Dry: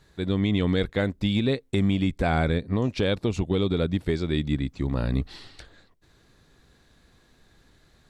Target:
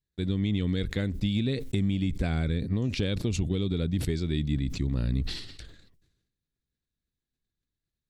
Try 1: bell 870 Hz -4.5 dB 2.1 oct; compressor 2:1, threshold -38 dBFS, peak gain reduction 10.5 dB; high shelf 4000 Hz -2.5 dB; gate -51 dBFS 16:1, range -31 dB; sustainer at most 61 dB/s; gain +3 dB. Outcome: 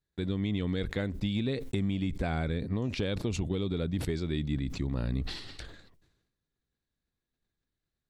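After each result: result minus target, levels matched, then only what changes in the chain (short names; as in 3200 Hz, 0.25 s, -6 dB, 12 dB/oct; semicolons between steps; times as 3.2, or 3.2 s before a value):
1000 Hz band +7.0 dB; compressor: peak gain reduction +5.5 dB
change: bell 870 Hz -15 dB 2.1 oct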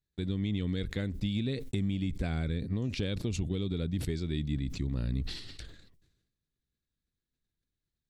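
compressor: peak gain reduction +4.5 dB
change: compressor 2:1, threshold -29 dBFS, peak gain reduction 5 dB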